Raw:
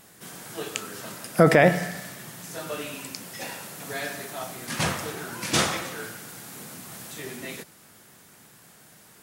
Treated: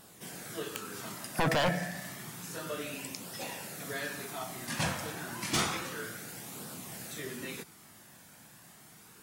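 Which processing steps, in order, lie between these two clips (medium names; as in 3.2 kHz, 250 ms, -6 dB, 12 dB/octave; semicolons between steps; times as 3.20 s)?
in parallel at -2 dB: compression, threshold -36 dBFS, peak gain reduction 23 dB; on the sum: wavefolder -13.5 dBFS; flange 0.3 Hz, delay 0.2 ms, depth 1.1 ms, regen -57%; trim -3.5 dB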